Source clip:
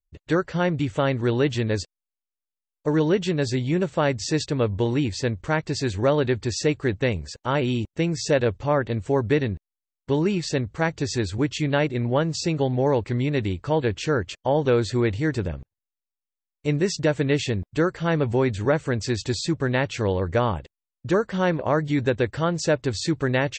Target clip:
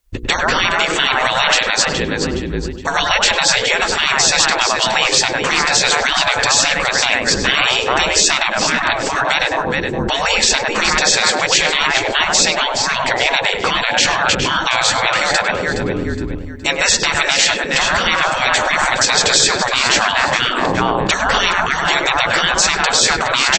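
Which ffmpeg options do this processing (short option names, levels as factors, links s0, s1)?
-filter_complex "[0:a]asplit=2[s0][s1];[s1]adelay=100,lowpass=f=1100:p=1,volume=0.562,asplit=2[s2][s3];[s3]adelay=100,lowpass=f=1100:p=1,volume=0.37,asplit=2[s4][s5];[s5]adelay=100,lowpass=f=1100:p=1,volume=0.37,asplit=2[s6][s7];[s7]adelay=100,lowpass=f=1100:p=1,volume=0.37,asplit=2[s8][s9];[s9]adelay=100,lowpass=f=1100:p=1,volume=0.37[s10];[s2][s4][s6][s8][s10]amix=inputs=5:normalize=0[s11];[s0][s11]amix=inputs=2:normalize=0,afreqshift=-56,bandreject=f=60:t=h:w=6,bandreject=f=120:t=h:w=6,bandreject=f=180:t=h:w=6,bandreject=f=240:t=h:w=6,bandreject=f=300:t=h:w=6,bandreject=f=360:t=h:w=6,bandreject=f=420:t=h:w=6,bandreject=f=480:t=h:w=6,asplit=2[s12][s13];[s13]aecho=0:1:417|834|1251:0.251|0.0829|0.0274[s14];[s12][s14]amix=inputs=2:normalize=0,afftfilt=real='re*lt(hypot(re,im),0.0794)':imag='im*lt(hypot(re,im),0.0794)':win_size=1024:overlap=0.75,alimiter=level_in=16.8:limit=0.891:release=50:level=0:latency=1,volume=0.891"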